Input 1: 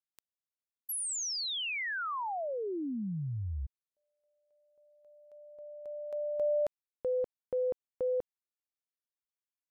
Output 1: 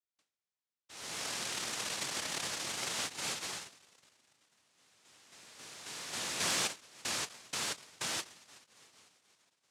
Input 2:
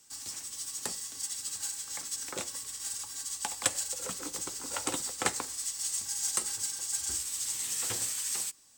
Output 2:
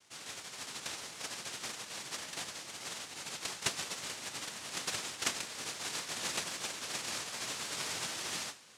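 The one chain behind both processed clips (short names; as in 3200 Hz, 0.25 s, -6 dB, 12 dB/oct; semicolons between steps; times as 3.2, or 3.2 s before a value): two-slope reverb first 0.28 s, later 3.5 s, from -22 dB, DRR 6 dB; noise vocoder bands 1; gain -4 dB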